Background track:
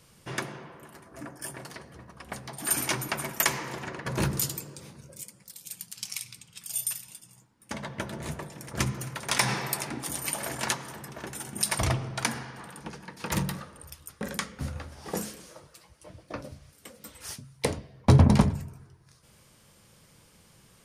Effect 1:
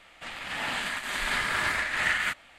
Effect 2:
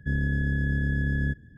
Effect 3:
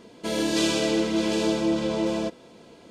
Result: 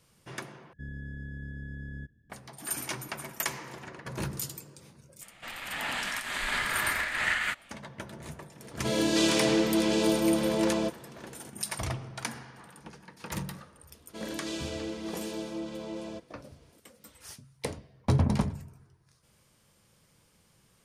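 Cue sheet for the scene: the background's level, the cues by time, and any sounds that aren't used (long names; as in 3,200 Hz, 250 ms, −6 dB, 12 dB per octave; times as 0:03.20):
background track −7 dB
0:00.73: overwrite with 2 −14.5 dB
0:05.21: mix in 1 −2 dB
0:08.60: mix in 3 −1.5 dB
0:13.90: mix in 3 −13 dB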